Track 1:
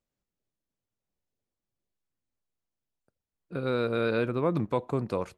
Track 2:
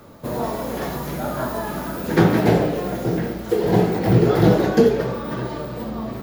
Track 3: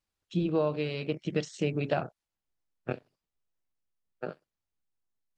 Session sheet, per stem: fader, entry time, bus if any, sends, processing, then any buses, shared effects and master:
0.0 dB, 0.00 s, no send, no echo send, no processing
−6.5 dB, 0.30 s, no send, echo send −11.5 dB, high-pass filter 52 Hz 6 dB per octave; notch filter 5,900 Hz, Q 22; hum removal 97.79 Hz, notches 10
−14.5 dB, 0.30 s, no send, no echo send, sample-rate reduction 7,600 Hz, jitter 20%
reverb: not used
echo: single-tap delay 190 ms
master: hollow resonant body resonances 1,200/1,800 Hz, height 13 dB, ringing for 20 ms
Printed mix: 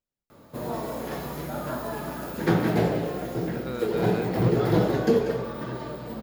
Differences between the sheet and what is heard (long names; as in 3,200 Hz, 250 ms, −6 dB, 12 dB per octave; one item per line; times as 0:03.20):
stem 1 0.0 dB → −6.0 dB
master: missing hollow resonant body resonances 1,200/1,800 Hz, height 13 dB, ringing for 20 ms